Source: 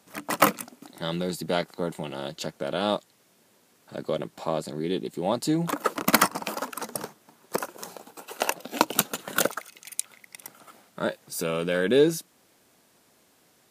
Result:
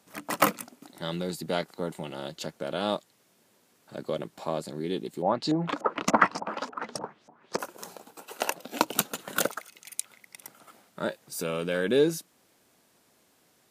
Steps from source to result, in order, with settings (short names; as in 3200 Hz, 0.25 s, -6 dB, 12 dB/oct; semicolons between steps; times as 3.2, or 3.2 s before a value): 5.22–7.59 LFO low-pass saw up 3.4 Hz 610–7300 Hz; gain -3 dB